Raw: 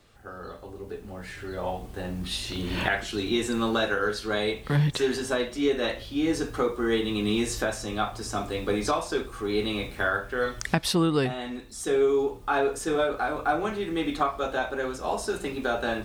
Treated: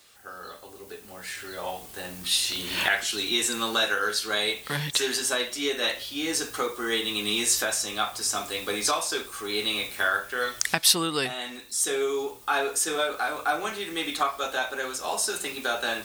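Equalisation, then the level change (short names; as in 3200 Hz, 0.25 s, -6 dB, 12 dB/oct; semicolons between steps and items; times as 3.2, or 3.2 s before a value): tilt +4 dB/oct; 0.0 dB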